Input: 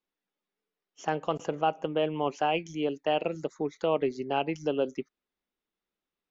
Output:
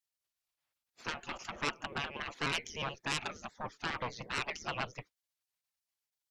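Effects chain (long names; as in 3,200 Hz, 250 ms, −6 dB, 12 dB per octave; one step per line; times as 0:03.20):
pitch shifter gated in a rhythm −1.5 semitones, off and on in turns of 60 ms
harmonic generator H 3 −12 dB, 5 −12 dB, 8 −30 dB, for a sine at −14.5 dBFS
gate on every frequency bin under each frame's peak −15 dB weak
level +2.5 dB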